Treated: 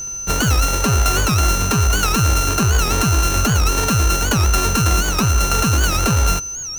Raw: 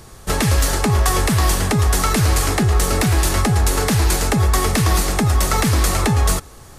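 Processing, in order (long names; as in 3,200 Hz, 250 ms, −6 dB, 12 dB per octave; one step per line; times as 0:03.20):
samples sorted by size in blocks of 32 samples
steady tone 6,100 Hz −25 dBFS
wow of a warped record 78 rpm, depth 160 cents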